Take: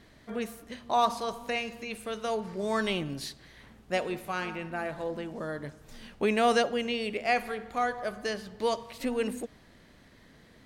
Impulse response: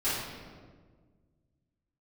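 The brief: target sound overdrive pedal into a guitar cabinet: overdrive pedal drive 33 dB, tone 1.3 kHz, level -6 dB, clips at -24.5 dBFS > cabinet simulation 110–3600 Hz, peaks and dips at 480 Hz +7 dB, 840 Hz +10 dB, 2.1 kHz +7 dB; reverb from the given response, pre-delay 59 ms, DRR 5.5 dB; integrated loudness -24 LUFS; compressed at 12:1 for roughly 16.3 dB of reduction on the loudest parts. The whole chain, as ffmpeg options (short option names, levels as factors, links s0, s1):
-filter_complex "[0:a]acompressor=threshold=0.0158:ratio=12,asplit=2[s0][s1];[1:a]atrim=start_sample=2205,adelay=59[s2];[s1][s2]afir=irnorm=-1:irlink=0,volume=0.178[s3];[s0][s3]amix=inputs=2:normalize=0,asplit=2[s4][s5];[s5]highpass=f=720:p=1,volume=44.7,asoftclip=type=tanh:threshold=0.0596[s6];[s4][s6]amix=inputs=2:normalize=0,lowpass=f=1300:p=1,volume=0.501,highpass=110,equalizer=f=480:t=q:w=4:g=7,equalizer=f=840:t=q:w=4:g=10,equalizer=f=2100:t=q:w=4:g=7,lowpass=f=3600:w=0.5412,lowpass=f=3600:w=1.3066,volume=1.78"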